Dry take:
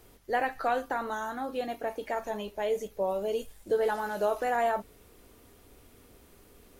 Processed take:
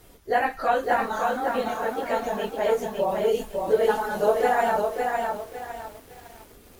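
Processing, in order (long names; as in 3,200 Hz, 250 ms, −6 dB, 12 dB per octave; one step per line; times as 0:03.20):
random phases in long frames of 50 ms
feedback echo at a low word length 556 ms, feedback 35%, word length 9 bits, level −3.5 dB
level +5 dB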